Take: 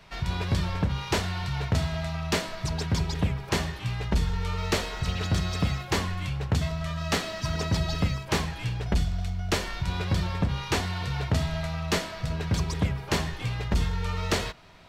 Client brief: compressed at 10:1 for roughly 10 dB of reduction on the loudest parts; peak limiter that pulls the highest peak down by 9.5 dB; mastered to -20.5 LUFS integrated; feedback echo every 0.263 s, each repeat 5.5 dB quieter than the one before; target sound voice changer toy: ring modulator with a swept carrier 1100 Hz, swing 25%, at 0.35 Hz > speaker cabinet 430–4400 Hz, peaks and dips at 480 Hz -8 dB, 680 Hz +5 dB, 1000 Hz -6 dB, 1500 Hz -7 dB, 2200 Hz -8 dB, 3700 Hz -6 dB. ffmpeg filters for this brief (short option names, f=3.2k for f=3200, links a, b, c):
-af "acompressor=threshold=-30dB:ratio=10,alimiter=level_in=3.5dB:limit=-24dB:level=0:latency=1,volume=-3.5dB,aecho=1:1:263|526|789|1052|1315|1578|1841:0.531|0.281|0.149|0.079|0.0419|0.0222|0.0118,aeval=exprs='val(0)*sin(2*PI*1100*n/s+1100*0.25/0.35*sin(2*PI*0.35*n/s))':c=same,highpass=430,equalizer=f=480:t=q:w=4:g=-8,equalizer=f=680:t=q:w=4:g=5,equalizer=f=1k:t=q:w=4:g=-6,equalizer=f=1.5k:t=q:w=4:g=-7,equalizer=f=2.2k:t=q:w=4:g=-8,equalizer=f=3.7k:t=q:w=4:g=-6,lowpass=f=4.4k:w=0.5412,lowpass=f=4.4k:w=1.3066,volume=20dB"